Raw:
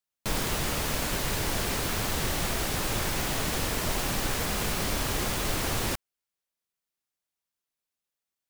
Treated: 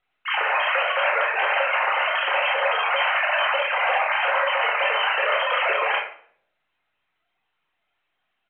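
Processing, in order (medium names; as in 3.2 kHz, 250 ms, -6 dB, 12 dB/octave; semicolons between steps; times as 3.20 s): formants replaced by sine waves; high-pass 760 Hz 12 dB/octave; pitch shift -2 st; simulated room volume 72 m³, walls mixed, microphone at 0.92 m; trim +4 dB; µ-law 64 kbps 8 kHz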